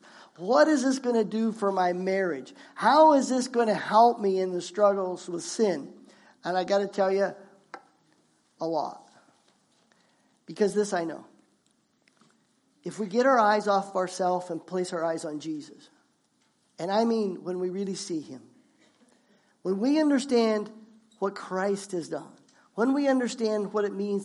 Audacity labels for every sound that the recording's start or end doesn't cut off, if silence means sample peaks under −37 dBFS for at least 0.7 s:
8.610000	8.960000	sound
10.490000	11.200000	sound
12.860000	15.730000	sound
16.800000	18.360000	sound